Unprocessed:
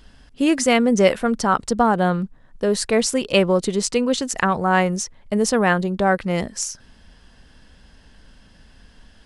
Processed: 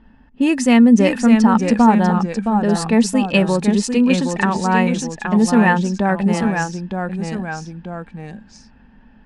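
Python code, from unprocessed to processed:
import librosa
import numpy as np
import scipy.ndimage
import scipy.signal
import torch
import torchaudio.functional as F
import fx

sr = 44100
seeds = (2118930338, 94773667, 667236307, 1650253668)

y = fx.env_lowpass(x, sr, base_hz=1600.0, full_db=-16.5)
y = fx.small_body(y, sr, hz=(230.0, 880.0, 1800.0, 2600.0), ring_ms=50, db=13)
y = fx.echo_pitch(y, sr, ms=560, semitones=-1, count=2, db_per_echo=-6.0)
y = y * 10.0 ** (-3.0 / 20.0)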